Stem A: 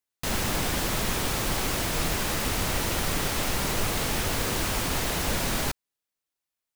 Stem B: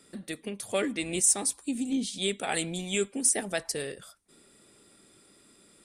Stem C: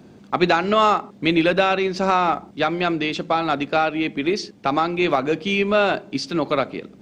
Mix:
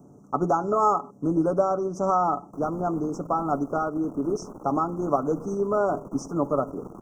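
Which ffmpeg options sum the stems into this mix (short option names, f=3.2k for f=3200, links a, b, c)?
-filter_complex "[0:a]acrossover=split=310[a][b];[b]acompressor=threshold=-50dB:ratio=2[c];[a][c]amix=inputs=2:normalize=0,aeval=exprs='max(val(0),0)':c=same,acrossover=split=180 2300:gain=0.1 1 0.0708[d][e][f];[d][e][f]amix=inputs=3:normalize=0,adelay=2300,volume=1.5dB[g];[2:a]aecho=1:1:7:0.42,volume=-4.5dB[h];[g][h]amix=inputs=2:normalize=0,asuperstop=centerf=2800:order=20:qfactor=0.65"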